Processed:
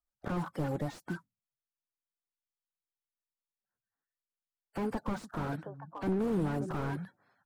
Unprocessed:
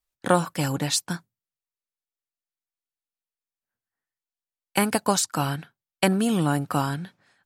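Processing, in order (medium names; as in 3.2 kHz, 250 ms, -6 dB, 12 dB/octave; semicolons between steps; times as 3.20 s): coarse spectral quantiser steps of 30 dB; resonant high shelf 1.9 kHz -8 dB, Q 1.5; 4.87–6.97 s: repeats whose band climbs or falls 290 ms, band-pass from 160 Hz, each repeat 1.4 oct, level -9 dB; slew-rate limiter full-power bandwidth 27 Hz; trim -6 dB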